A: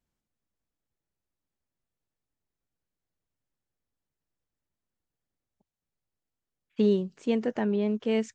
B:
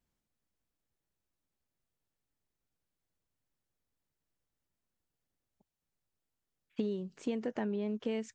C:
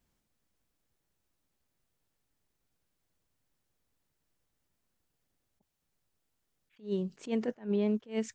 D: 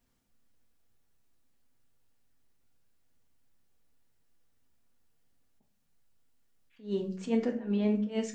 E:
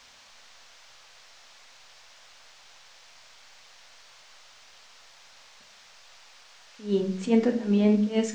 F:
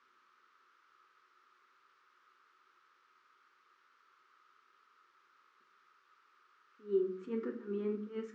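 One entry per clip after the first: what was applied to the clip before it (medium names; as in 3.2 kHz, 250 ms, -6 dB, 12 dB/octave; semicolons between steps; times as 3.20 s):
compression 12:1, threshold -31 dBFS, peak gain reduction 13 dB
attacks held to a fixed rise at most 220 dB/s; trim +6.5 dB
reverberation, pre-delay 4 ms, DRR 1.5 dB
band noise 530–6100 Hz -61 dBFS; trim +7 dB
two resonant band-passes 680 Hz, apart 1.8 oct; trim -1.5 dB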